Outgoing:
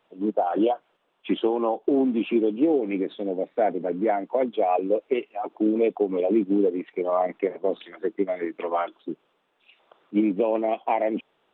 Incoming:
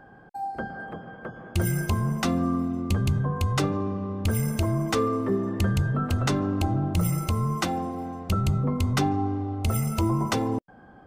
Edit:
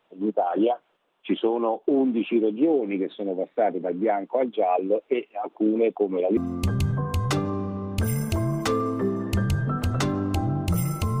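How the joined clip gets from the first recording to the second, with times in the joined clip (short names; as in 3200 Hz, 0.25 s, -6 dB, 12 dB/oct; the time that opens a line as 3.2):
outgoing
6.37 switch to incoming from 2.64 s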